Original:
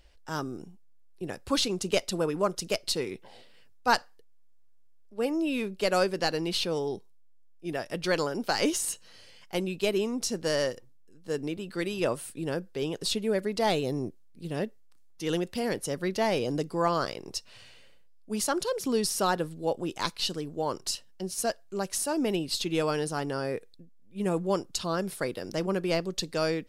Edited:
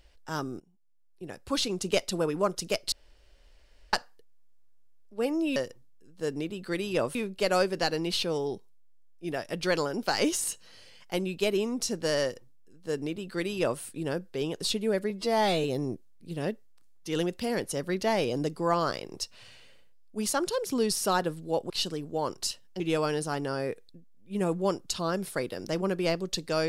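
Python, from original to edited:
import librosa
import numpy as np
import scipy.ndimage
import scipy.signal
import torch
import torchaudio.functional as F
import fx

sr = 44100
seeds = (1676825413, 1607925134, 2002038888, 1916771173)

y = fx.edit(x, sr, fx.fade_in_from(start_s=0.6, length_s=1.29, floor_db=-21.0),
    fx.room_tone_fill(start_s=2.92, length_s=1.01),
    fx.duplicate(start_s=10.63, length_s=1.59, to_s=5.56),
    fx.stretch_span(start_s=13.51, length_s=0.27, factor=2.0),
    fx.cut(start_s=19.84, length_s=0.3),
    fx.cut(start_s=21.24, length_s=1.41), tone=tone)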